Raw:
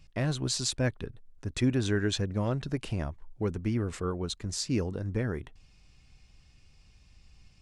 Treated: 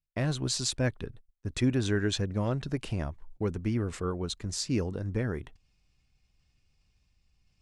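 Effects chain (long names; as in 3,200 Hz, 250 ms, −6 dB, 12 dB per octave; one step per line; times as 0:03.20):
noise gate −46 dBFS, range −33 dB
reversed playback
upward compression, threshold −50 dBFS
reversed playback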